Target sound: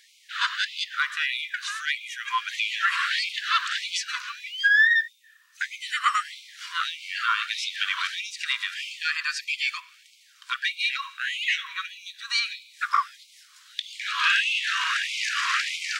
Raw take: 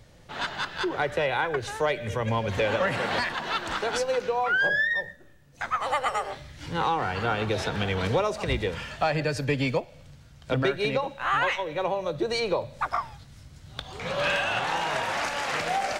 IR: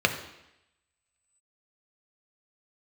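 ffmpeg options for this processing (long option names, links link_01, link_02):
-filter_complex "[0:a]acrossover=split=8000[link_01][link_02];[link_02]acompressor=threshold=-59dB:ratio=4:attack=1:release=60[link_03];[link_01][link_03]amix=inputs=2:normalize=0,asplit=2[link_04][link_05];[1:a]atrim=start_sample=2205,asetrate=35721,aresample=44100[link_06];[link_05][link_06]afir=irnorm=-1:irlink=0,volume=-31.5dB[link_07];[link_04][link_07]amix=inputs=2:normalize=0,afftfilt=real='re*gte(b*sr/1024,950*pow(2100/950,0.5+0.5*sin(2*PI*1.6*pts/sr)))':imag='im*gte(b*sr/1024,950*pow(2100/950,0.5+0.5*sin(2*PI*1.6*pts/sr)))':win_size=1024:overlap=0.75,volume=6.5dB"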